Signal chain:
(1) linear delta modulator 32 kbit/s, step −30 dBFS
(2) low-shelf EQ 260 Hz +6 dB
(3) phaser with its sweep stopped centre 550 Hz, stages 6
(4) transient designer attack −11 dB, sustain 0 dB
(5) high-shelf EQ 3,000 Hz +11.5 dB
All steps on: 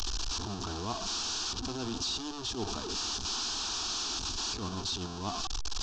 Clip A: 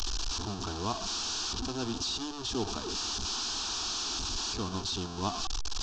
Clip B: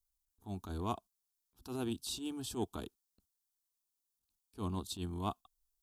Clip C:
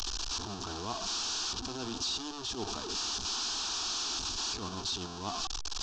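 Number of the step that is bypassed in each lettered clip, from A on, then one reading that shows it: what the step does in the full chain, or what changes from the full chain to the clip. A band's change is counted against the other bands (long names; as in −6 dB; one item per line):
4, change in momentary loudness spread −1 LU
1, 4 kHz band −12.0 dB
2, 125 Hz band −4.5 dB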